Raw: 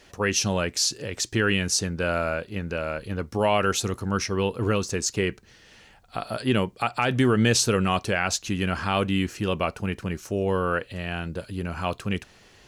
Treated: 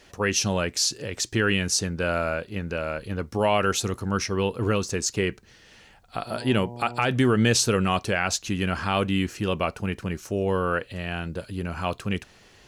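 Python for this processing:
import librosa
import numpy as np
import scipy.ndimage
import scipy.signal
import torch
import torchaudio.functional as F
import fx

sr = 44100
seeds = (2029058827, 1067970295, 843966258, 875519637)

y = fx.dmg_buzz(x, sr, base_hz=120.0, harmonics=8, level_db=-38.0, tilt_db=-4, odd_only=False, at=(6.26, 7.05), fade=0.02)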